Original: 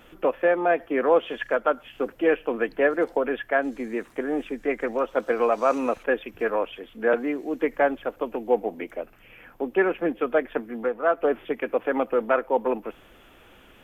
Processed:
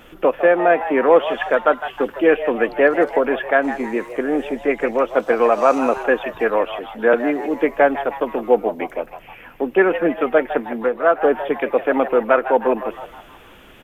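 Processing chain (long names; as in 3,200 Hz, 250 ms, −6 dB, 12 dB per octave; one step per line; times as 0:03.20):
echo with shifted repeats 157 ms, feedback 46%, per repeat +130 Hz, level −12 dB
level +6.5 dB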